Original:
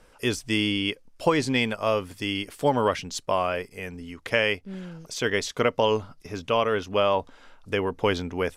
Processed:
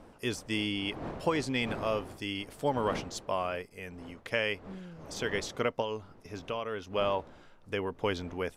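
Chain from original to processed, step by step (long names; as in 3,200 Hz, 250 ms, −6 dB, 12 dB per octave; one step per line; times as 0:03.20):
wind on the microphone 590 Hz −39 dBFS
0:05.81–0:06.87: downward compressor 2.5 to 1, threshold −26 dBFS, peak gain reduction 6 dB
level −7.5 dB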